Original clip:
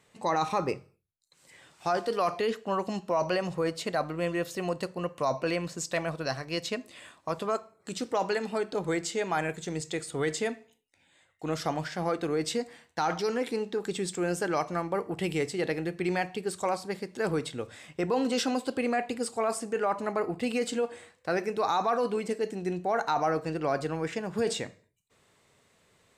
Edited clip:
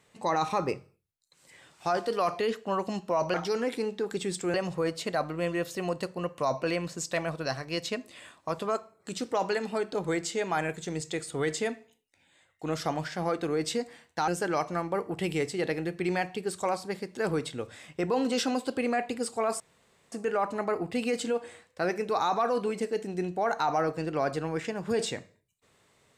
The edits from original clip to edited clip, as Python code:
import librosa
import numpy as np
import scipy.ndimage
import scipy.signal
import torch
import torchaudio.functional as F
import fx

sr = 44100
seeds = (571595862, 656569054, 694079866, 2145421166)

y = fx.edit(x, sr, fx.move(start_s=13.08, length_s=1.2, to_s=3.34),
    fx.insert_room_tone(at_s=19.6, length_s=0.52), tone=tone)